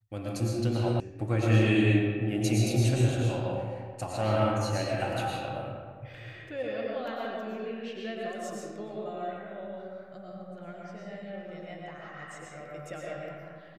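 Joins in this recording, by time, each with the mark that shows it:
0:01.00: cut off before it has died away

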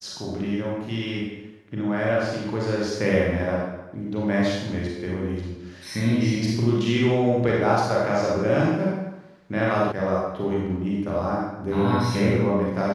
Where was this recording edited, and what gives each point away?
0:09.92: cut off before it has died away

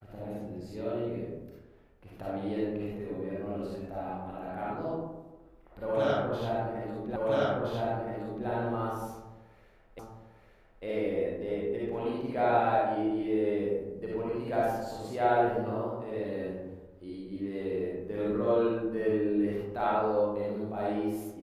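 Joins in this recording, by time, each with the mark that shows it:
0:07.16: the same again, the last 1.32 s
0:09.99: the same again, the last 0.85 s

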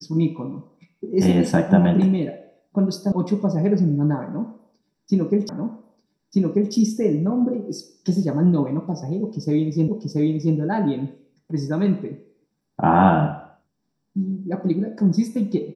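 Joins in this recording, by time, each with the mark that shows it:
0:03.12: cut off before it has died away
0:05.49: the same again, the last 1.24 s
0:09.88: the same again, the last 0.68 s

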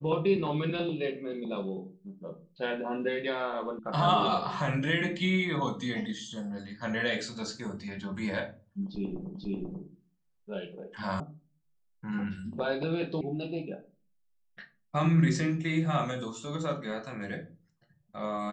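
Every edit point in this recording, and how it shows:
0:03.79: cut off before it has died away
0:09.35: the same again, the last 0.49 s
0:11.20: cut off before it has died away
0:13.21: cut off before it has died away

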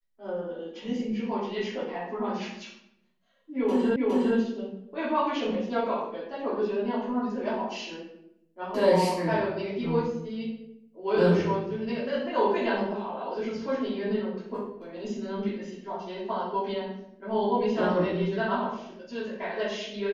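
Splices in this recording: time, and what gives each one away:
0:03.96: the same again, the last 0.41 s

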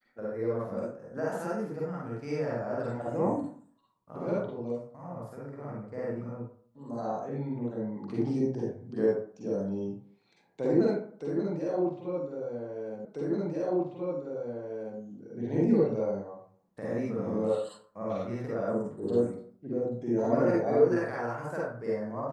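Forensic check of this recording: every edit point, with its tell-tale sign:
0:13.05: the same again, the last 1.94 s

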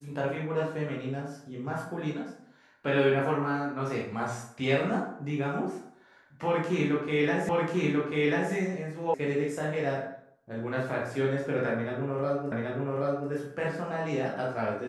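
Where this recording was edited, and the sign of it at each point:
0:07.49: the same again, the last 1.04 s
0:09.14: cut off before it has died away
0:12.52: the same again, the last 0.78 s

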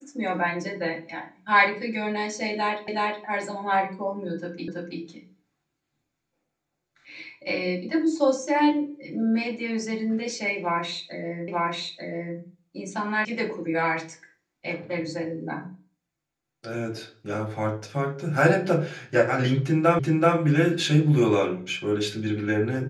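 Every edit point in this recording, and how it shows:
0:02.88: the same again, the last 0.37 s
0:04.68: the same again, the last 0.33 s
0:11.48: the same again, the last 0.89 s
0:13.25: cut off before it has died away
0:19.99: the same again, the last 0.38 s

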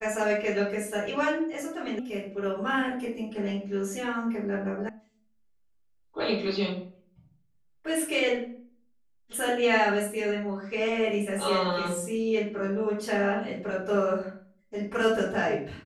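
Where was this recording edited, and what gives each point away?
0:01.99: cut off before it has died away
0:04.89: cut off before it has died away

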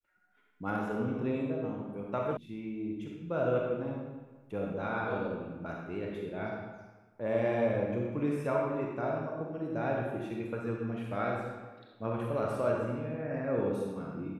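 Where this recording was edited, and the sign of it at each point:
0:02.37: cut off before it has died away

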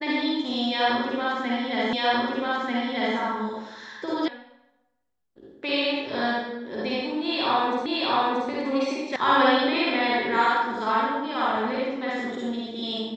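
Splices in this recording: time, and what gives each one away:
0:01.93: the same again, the last 1.24 s
0:04.28: cut off before it has died away
0:07.86: the same again, the last 0.63 s
0:09.16: cut off before it has died away

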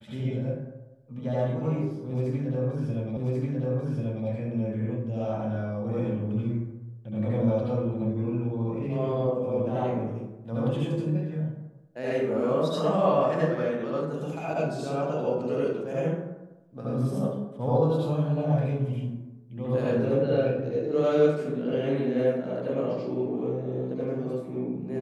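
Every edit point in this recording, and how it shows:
0:03.17: the same again, the last 1.09 s

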